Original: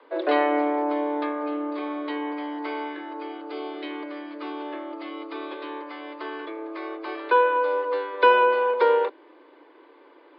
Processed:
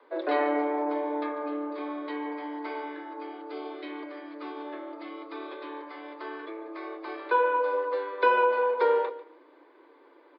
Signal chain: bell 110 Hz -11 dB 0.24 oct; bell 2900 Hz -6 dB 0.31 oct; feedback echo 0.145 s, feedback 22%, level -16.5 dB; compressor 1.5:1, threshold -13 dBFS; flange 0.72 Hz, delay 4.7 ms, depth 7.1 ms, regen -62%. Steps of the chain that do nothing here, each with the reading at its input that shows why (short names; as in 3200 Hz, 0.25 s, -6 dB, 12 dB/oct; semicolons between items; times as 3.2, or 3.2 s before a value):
bell 110 Hz: input band starts at 290 Hz